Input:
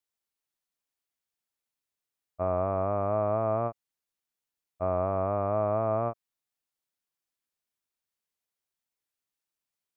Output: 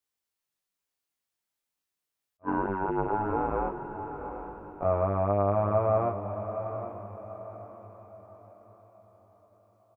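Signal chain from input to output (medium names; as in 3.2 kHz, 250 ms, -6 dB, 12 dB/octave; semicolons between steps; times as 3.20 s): 2.42–4.83 s: ring modulator 360 Hz -> 71 Hz; doubling 20 ms -3 dB; echo that smears into a reverb 788 ms, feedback 41%, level -9 dB; attacks held to a fixed rise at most 530 dB/s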